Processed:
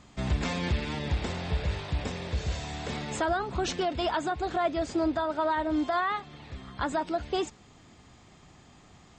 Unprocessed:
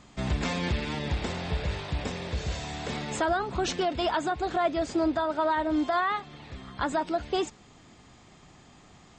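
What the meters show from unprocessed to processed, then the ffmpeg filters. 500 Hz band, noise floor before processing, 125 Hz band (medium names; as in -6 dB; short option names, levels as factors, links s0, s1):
-1.5 dB, -55 dBFS, +0.5 dB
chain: -af "equalizer=f=77:t=o:w=1.2:g=3.5,volume=0.841"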